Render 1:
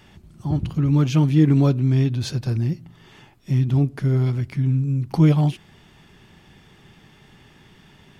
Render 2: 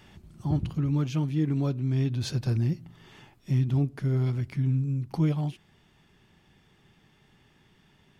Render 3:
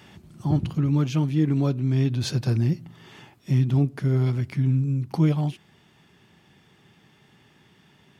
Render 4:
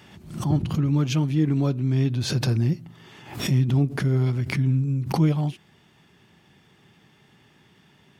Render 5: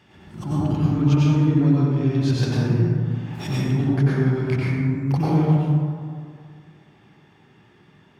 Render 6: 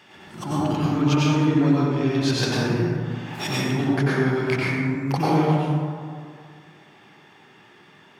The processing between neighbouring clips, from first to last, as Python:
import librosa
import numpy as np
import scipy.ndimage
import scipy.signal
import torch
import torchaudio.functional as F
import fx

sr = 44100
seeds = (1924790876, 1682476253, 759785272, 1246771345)

y1 = fx.rider(x, sr, range_db=10, speed_s=0.5)
y1 = y1 * 10.0 ** (-7.5 / 20.0)
y2 = scipy.signal.sosfilt(scipy.signal.butter(2, 98.0, 'highpass', fs=sr, output='sos'), y1)
y2 = y2 * 10.0 ** (5.0 / 20.0)
y3 = fx.pre_swell(y2, sr, db_per_s=100.0)
y4 = fx.high_shelf(y3, sr, hz=7000.0, db=-10.5)
y4 = fx.rev_plate(y4, sr, seeds[0], rt60_s=2.2, hf_ratio=0.35, predelay_ms=80, drr_db=-8.0)
y4 = y4 * 10.0 ** (-5.5 / 20.0)
y5 = fx.highpass(y4, sr, hz=570.0, slope=6)
y5 = y5 * 10.0 ** (7.5 / 20.0)